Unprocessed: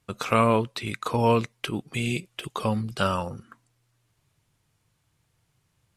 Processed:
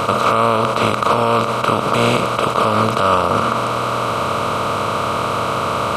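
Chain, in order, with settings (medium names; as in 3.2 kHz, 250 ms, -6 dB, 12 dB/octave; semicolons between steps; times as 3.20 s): spectral levelling over time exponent 0.2; graphic EQ with 31 bands 630 Hz +8 dB, 1.25 kHz +8 dB, 2 kHz -3 dB; peak limiter -8 dBFS, peak gain reduction 10 dB; trim +4 dB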